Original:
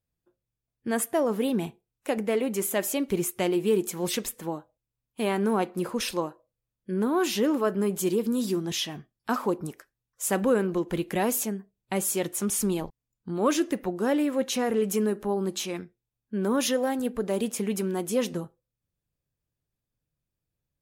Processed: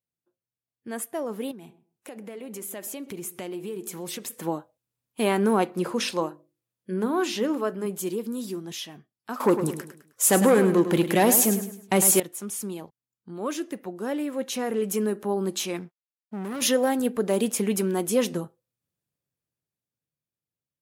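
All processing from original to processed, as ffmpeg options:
-filter_complex "[0:a]asettb=1/sr,asplit=3[s0][s1][s2];[s0]atrim=end=1.514[s3];[s1]atrim=start=1.51:end=4.33,asetpts=PTS-STARTPTS,afade=t=in:d=0.004:c=qsin,afade=t=out:st=2.816:d=0.004:c=qsin,acompressor=threshold=0.0141:ratio=4:attack=3.2:release=140:knee=1:detection=peak,asplit=2[s4][s5];[s5]adelay=129,lowpass=f=1100:p=1,volume=0.141,asplit=2[s6][s7];[s7]adelay=129,lowpass=f=1100:p=1,volume=0.17[s8];[s4][s6][s8]amix=inputs=3:normalize=0,atrim=end_sample=124362[s9];[s2]atrim=start=4.326[s10];[s3][s9]acrossfade=d=0.004:c1=hsin:c2=qsin[s11];[s11][s10]acrossfade=d=0.004:c1=qsin:c2=hsin,asettb=1/sr,asplit=3[s12][s13][s14];[s12]atrim=end=5.654[s15];[s13]atrim=start=5.65:end=7.86,asetpts=PTS-STARTPTS,afade=t=in:d=0.004:c=qsin,afade=t=out:st=2.206:d=0.004:c=qsin,bandreject=f=50:t=h:w=6,bandreject=f=100:t=h:w=6,bandreject=f=150:t=h:w=6,bandreject=f=200:t=h:w=6,bandreject=f=250:t=h:w=6,bandreject=f=300:t=h:w=6,bandreject=f=350:t=h:w=6,bandreject=f=400:t=h:w=6,acrossover=split=8000[s16][s17];[s17]acompressor=threshold=0.002:ratio=4:attack=1:release=60[s18];[s16][s18]amix=inputs=2:normalize=0[s19];[s14]atrim=start=7.856[s20];[s15][s19]acrossfade=d=0.004:c1=hsin:c2=qsin[s21];[s21][s20]acrossfade=d=0.004:c1=qsin:c2=hsin,asettb=1/sr,asplit=3[s22][s23][s24];[s22]atrim=end=9.404[s25];[s23]atrim=start=9.4:end=12.2,asetpts=PTS-STARTPTS,afade=t=in:d=0.004:c=qsin,afade=t=out:st=2.796:d=0.004:c=qsin,acontrast=64,aeval=exprs='0.473*sin(PI/2*1.78*val(0)/0.473)':c=same,aecho=1:1:104|208|312|416:0.316|0.117|0.0433|0.016,atrim=end_sample=123480[s26];[s24]atrim=start=12.196[s27];[s25][s26]acrossfade=d=0.004:c1=hsin:c2=qsin[s28];[s28][s27]acrossfade=d=0.004:c1=qsin:c2=hsin,asettb=1/sr,asplit=3[s29][s30][s31];[s29]atrim=end=15.794[s32];[s30]atrim=start=15.79:end=16.62,asetpts=PTS-STARTPTS,afade=t=in:d=0.004:c=qsin,afade=t=out:st=0.826:d=0.004:c=qsin,equalizer=f=170:t=o:w=0.4:g=5.5,aeval=exprs='(tanh(44.7*val(0)+0.25)-tanh(0.25))/44.7':c=same,aeval=exprs='sgn(val(0))*max(abs(val(0))-0.00112,0)':c=same[s33];[s31]atrim=start=16.616[s34];[s32][s33]acrossfade=d=0.004:c1=hsin:c2=qsin[s35];[s35][s34]acrossfade=d=0.004:c1=qsin:c2=hsin,highpass=130,equalizer=f=11000:t=o:w=0.71:g=3,dynaudnorm=f=420:g=11:m=4.47,volume=0.422"

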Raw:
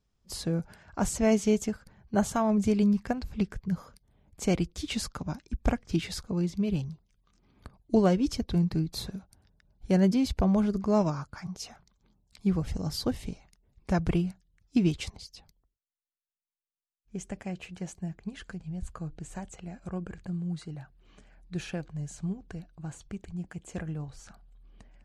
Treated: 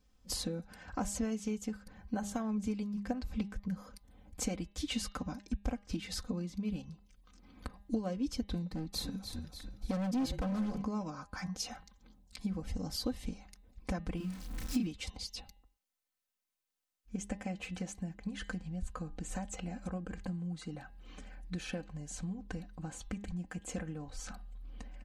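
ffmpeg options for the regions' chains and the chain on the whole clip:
-filter_complex "[0:a]asettb=1/sr,asplit=3[s0][s1][s2];[s0]atrim=end=8.664[s3];[s1]atrim=start=8.66:end=10.82,asetpts=PTS-STARTPTS,afade=t=in:d=0.004:c=qsin,afade=t=out:st=2.156:d=0.004:c=qsin,asplit=5[s4][s5][s6][s7][s8];[s5]adelay=294,afreqshift=-39,volume=0.237[s9];[s6]adelay=588,afreqshift=-78,volume=0.105[s10];[s7]adelay=882,afreqshift=-117,volume=0.0457[s11];[s8]adelay=1176,afreqshift=-156,volume=0.0202[s12];[s4][s9][s10][s11][s12]amix=inputs=5:normalize=0,atrim=end_sample=95256,volume=20,asoftclip=hard,volume=0.0501[s13];[s2]atrim=start=10.816[s14];[s3][s13]acrossfade=d=0.004:c1=hsin:c2=qsin[s15];[s15][s14]acrossfade=d=0.004:c1=qsin:c2=hsin,asettb=1/sr,asplit=3[s16][s17][s18];[s16]atrim=end=14.174[s19];[s17]atrim=start=14.17:end=14.87,asetpts=PTS-STARTPTS,afade=t=in:d=0.004:c=qsin,afade=t=out:st=0.696:d=0.004:c=qsin,aeval=exprs='val(0)+0.5*0.01*sgn(val(0))':c=same,equalizer=f=540:w=1.1:g=-5.5,asplit=2[s20][s21];[s21]adelay=32,volume=0.794[s22];[s20][s22]amix=inputs=2:normalize=0,atrim=end_sample=30870[s23];[s18]atrim=start=14.866[s24];[s19][s23]acrossfade=d=0.004:c1=hsin:c2=qsin[s25];[s25][s24]acrossfade=d=0.004:c1=qsin:c2=hsin,acompressor=threshold=0.00891:ratio=5,aecho=1:1:3.9:0.77,bandreject=f=202.6:t=h:w=4,bandreject=f=405.2:t=h:w=4,bandreject=f=607.8:t=h:w=4,bandreject=f=810.4:t=h:w=4,bandreject=f=1013:t=h:w=4,bandreject=f=1215.6:t=h:w=4,bandreject=f=1418.2:t=h:w=4,bandreject=f=1620.8:t=h:w=4,bandreject=f=1823.4:t=h:w=4,bandreject=f=2026:t=h:w=4,bandreject=f=2228.6:t=h:w=4,bandreject=f=2431.2:t=h:w=4,bandreject=f=2633.8:t=h:w=4,bandreject=f=2836.4:t=h:w=4,bandreject=f=3039:t=h:w=4,bandreject=f=3241.6:t=h:w=4,bandreject=f=3444.2:t=h:w=4,bandreject=f=3646.8:t=h:w=4,bandreject=f=3849.4:t=h:w=4,bandreject=f=4052:t=h:w=4,volume=1.58"

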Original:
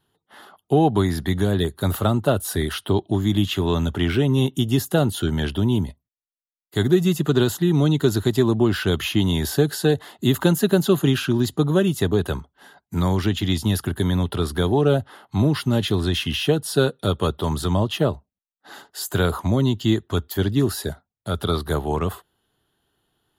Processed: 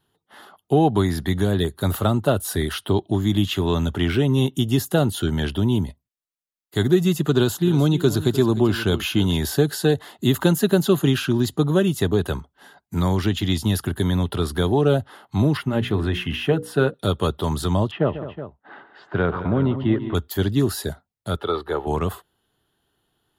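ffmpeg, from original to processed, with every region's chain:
-filter_complex "[0:a]asettb=1/sr,asplit=3[s0][s1][s2];[s0]atrim=end=7.344[s3];[s1]atrim=start=7.34:end=9.37,asetpts=PTS-STARTPTS,afade=t=in:d=0.004:c=qsin,afade=t=out:st=2.026:d=0.004:c=qsin,bandreject=f=1900:w=9.5,aecho=1:1:303:0.2,atrim=end_sample=89523[s4];[s2]atrim=start=9.366[s5];[s3][s4]acrossfade=d=0.004:c1=hsin:c2=qsin[s6];[s6][s5]acrossfade=d=0.004:c1=qsin:c2=hsin,asettb=1/sr,asplit=3[s7][s8][s9];[s7]atrim=end=15.574[s10];[s8]atrim=start=15.57:end=16.94,asetpts=PTS-STARTPTS,afade=t=in:d=0.004:c=qsin,afade=t=out:st=1.366:d=0.004:c=qsin,highshelf=f=3100:t=q:w=1.5:g=-9.5,bandreject=f=60:t=h:w=6,bandreject=f=120:t=h:w=6,bandreject=f=180:t=h:w=6,bandreject=f=240:t=h:w=6,bandreject=f=300:t=h:w=6,bandreject=f=360:t=h:w=6,bandreject=f=420:t=h:w=6,bandreject=f=480:t=h:w=6,bandreject=f=540:t=h:w=6[s11];[s9]atrim=start=16.936[s12];[s10][s11]acrossfade=d=0.004:c1=hsin:c2=qsin[s13];[s13][s12]acrossfade=d=0.004:c1=qsin:c2=hsin,asettb=1/sr,asplit=3[s14][s15][s16];[s14]atrim=end=17.914[s17];[s15]atrim=start=17.91:end=20.15,asetpts=PTS-STARTPTS,afade=t=in:d=0.004:c=qsin,afade=t=out:st=2.236:d=0.004:c=qsin,lowpass=f=2400:w=0.5412,lowpass=f=2400:w=1.3066,equalizer=f=82:t=o:w=1:g=-4.5,aecho=1:1:142|209|370:0.224|0.2|0.224,atrim=end_sample=98784[s18];[s16]atrim=start=20.146[s19];[s17][s18]acrossfade=d=0.004:c1=hsin:c2=qsin[s20];[s20][s19]acrossfade=d=0.004:c1=qsin:c2=hsin,asettb=1/sr,asplit=3[s21][s22][s23];[s21]atrim=end=21.364[s24];[s22]atrim=start=21.36:end=21.87,asetpts=PTS-STARTPTS,afade=t=in:d=0.004:c=qsin,afade=t=out:st=0.506:d=0.004:c=qsin,acrossover=split=260 3300:gain=0.178 1 0.1[s25][s26][s27];[s25][s26][s27]amix=inputs=3:normalize=0,aecho=1:1:2.3:0.4,atrim=end_sample=22491[s28];[s23]atrim=start=21.866[s29];[s24][s28]acrossfade=d=0.004:c1=hsin:c2=qsin[s30];[s30][s29]acrossfade=d=0.004:c1=qsin:c2=hsin"

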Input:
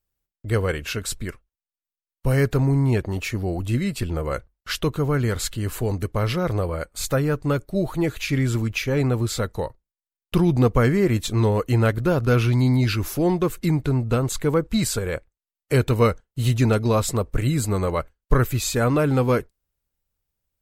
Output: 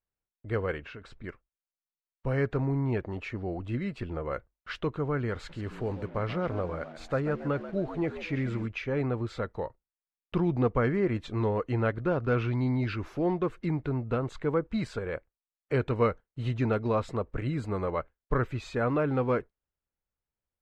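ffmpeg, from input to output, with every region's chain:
-filter_complex "[0:a]asettb=1/sr,asplit=3[s0][s1][s2];[s0]atrim=end=0.804[s3];[s1]atrim=start=0.8:end=1.24,asetpts=PTS-STARTPTS,afade=t=in:d=0.004:c=qsin,afade=t=out:st=0.436:d=0.004:c=qsin,lowpass=f=3800:p=1,acompressor=threshold=0.0282:ratio=5:attack=3.2:release=140:knee=1:detection=peak[s4];[s2]atrim=start=1.236[s5];[s3][s4]acrossfade=d=0.004:c1=hsin:c2=qsin[s6];[s6][s5]acrossfade=d=0.004:c1=qsin:c2=hsin,asettb=1/sr,asplit=3[s7][s8][s9];[s7]atrim=end=5.354[s10];[s8]atrim=start=5.35:end=8.66,asetpts=PTS-STARTPTS,afade=t=in:d=0.004:c=qsin,afade=t=out:st=3.306:d=0.004:c=qsin,asplit=5[s11][s12][s13][s14][s15];[s12]adelay=137,afreqshift=75,volume=0.237[s16];[s13]adelay=274,afreqshift=150,volume=0.0881[s17];[s14]adelay=411,afreqshift=225,volume=0.0324[s18];[s15]adelay=548,afreqshift=300,volume=0.012[s19];[s11][s16][s17][s18][s19]amix=inputs=5:normalize=0,atrim=end_sample=145971,acrusher=bits=6:mix=0:aa=0.5[s20];[s9]atrim=start=8.656[s21];[s10][s20]acrossfade=d=0.004:c1=hsin:c2=qsin[s22];[s22][s21]acrossfade=d=0.004:c1=qsin:c2=hsin,lowpass=2200,lowshelf=f=170:g=-7.5,volume=0.531"

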